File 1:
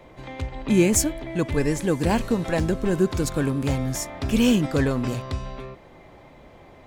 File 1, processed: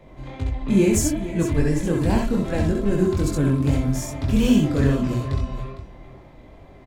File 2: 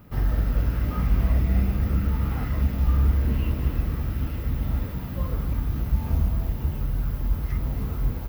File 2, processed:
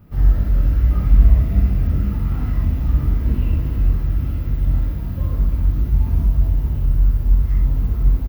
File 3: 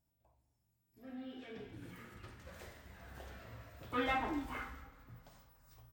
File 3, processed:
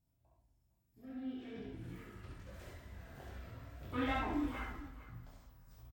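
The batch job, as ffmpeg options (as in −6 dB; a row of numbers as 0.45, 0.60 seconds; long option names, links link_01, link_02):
-filter_complex "[0:a]lowshelf=frequency=260:gain=9.5,flanger=delay=19.5:depth=4.4:speed=2.4,asplit=2[link_01][link_02];[link_02]aecho=0:1:65|68|456:0.531|0.531|0.211[link_03];[link_01][link_03]amix=inputs=2:normalize=0,volume=-1.5dB"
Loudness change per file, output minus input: +2.0, +6.5, −0.5 LU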